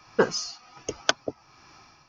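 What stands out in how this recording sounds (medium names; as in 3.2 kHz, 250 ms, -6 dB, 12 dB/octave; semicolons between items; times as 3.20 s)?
tremolo triangle 1.3 Hz, depth 75%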